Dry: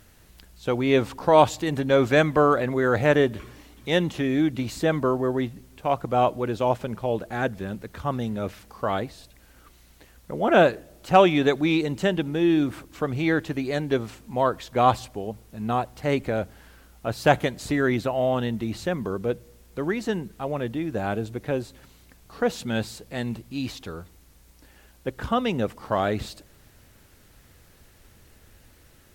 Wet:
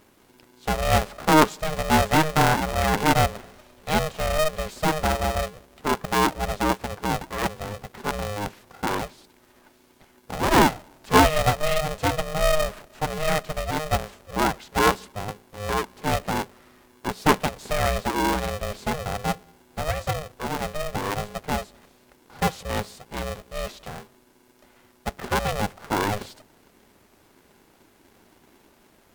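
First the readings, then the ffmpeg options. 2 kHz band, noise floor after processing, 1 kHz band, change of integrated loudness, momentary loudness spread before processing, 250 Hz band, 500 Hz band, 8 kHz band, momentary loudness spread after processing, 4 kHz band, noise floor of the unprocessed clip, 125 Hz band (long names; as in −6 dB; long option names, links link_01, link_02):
+2.0 dB, −59 dBFS, +2.5 dB, −0.5 dB, 15 LU, −3.0 dB, −3.5 dB, +10.0 dB, 15 LU, +4.5 dB, −55 dBFS, +0.5 dB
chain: -af "equalizer=frequency=470:width=0.37:gain=6,aeval=exprs='val(0)*sgn(sin(2*PI*310*n/s))':channel_layout=same,volume=-5.5dB"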